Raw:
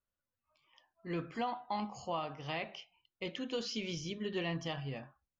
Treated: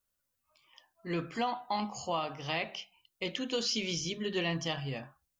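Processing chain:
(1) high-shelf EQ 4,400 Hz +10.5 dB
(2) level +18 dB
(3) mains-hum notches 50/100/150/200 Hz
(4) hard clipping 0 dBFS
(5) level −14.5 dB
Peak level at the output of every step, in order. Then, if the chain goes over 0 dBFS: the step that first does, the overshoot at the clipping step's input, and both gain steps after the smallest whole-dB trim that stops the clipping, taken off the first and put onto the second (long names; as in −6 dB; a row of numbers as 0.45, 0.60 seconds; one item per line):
−22.5, −4.5, −4.5, −4.5, −19.0 dBFS
no step passes full scale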